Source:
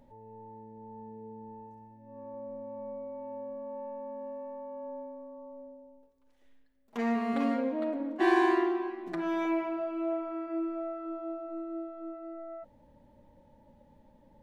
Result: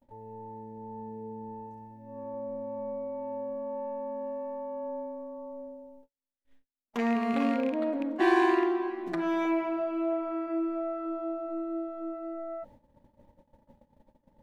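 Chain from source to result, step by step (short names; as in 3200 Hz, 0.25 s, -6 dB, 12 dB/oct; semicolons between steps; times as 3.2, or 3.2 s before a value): rattling part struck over -35 dBFS, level -31 dBFS; gate -57 dBFS, range -37 dB; in parallel at -2 dB: compressor, threshold -37 dBFS, peak gain reduction 16 dB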